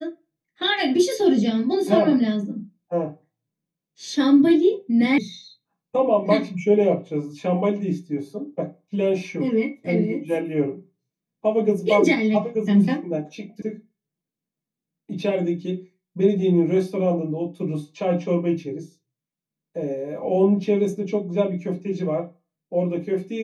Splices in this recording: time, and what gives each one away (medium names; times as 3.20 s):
5.18 s: sound stops dead
13.62 s: sound stops dead